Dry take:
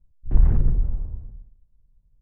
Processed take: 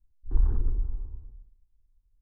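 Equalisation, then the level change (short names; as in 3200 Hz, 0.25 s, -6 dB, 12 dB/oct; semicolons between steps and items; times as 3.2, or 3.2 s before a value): fixed phaser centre 610 Hz, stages 6; -6.0 dB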